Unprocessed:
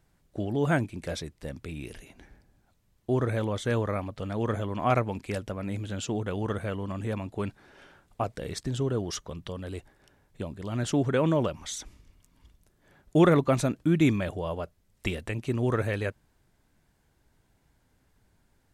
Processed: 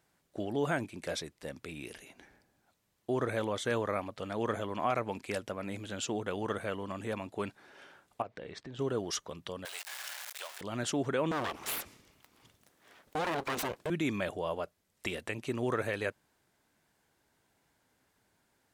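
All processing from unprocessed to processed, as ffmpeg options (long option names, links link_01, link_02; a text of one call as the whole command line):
ffmpeg -i in.wav -filter_complex "[0:a]asettb=1/sr,asplit=3[link_01][link_02][link_03];[link_01]atrim=end=8.224[link_04];[link_02]atrim=start=8.22:end=8.79,asetpts=PTS-STARTPTS,afade=type=in:duration=0.004:curve=qsin,afade=type=out:start_time=0.566:duration=0.004:curve=qsin,lowpass=3000,bandreject=frequency=1400:width=22,acompressor=threshold=-38dB:ratio=2.5:attack=3.2:release=140:knee=1:detection=peak[link_05];[link_03]atrim=start=8.786[link_06];[link_04][link_05]acrossfade=duration=0.004:curve1=hsin:curve2=qsin[link_07];[link_07][link_06]acrossfade=duration=0.004:curve1=qsin:curve2=hsin,asettb=1/sr,asplit=3[link_08][link_09][link_10];[link_08]atrim=end=9.654[link_11];[link_09]atrim=start=9.65:end=10.61,asetpts=PTS-STARTPTS,afade=type=in:duration=0.004:curve=qsin,afade=type=out:start_time=0.956:duration=0.004:curve=qsin,aeval=exprs='val(0)+0.5*0.0126*sgn(val(0))':channel_layout=same,highpass=frequency=620:width=0.5412,highpass=frequency=620:width=1.3066,tiltshelf=frequency=1100:gain=-7[link_12];[link_10]atrim=start=10.606[link_13];[link_11][link_12]acrossfade=duration=0.004:curve1=hsin:curve2=qsin[link_14];[link_14][link_13]acrossfade=duration=0.004:curve1=qsin:curve2=hsin,asettb=1/sr,asplit=3[link_15][link_16][link_17];[link_15]atrim=end=11.314[link_18];[link_16]atrim=start=11.31:end=13.9,asetpts=PTS-STARTPTS,afade=type=in:duration=0.004:curve=qsin,afade=type=out:start_time=2.586:duration=0.004:curve=qsin,acontrast=52,aeval=exprs='abs(val(0))':channel_layout=same[link_19];[link_17]atrim=start=13.896[link_20];[link_18][link_19]acrossfade=duration=0.004:curve1=hsin:curve2=qsin[link_21];[link_21][link_20]acrossfade=duration=0.004:curve1=qsin:curve2=hsin,alimiter=limit=-18.5dB:level=0:latency=1:release=81,highpass=frequency=400:poles=1" out.wav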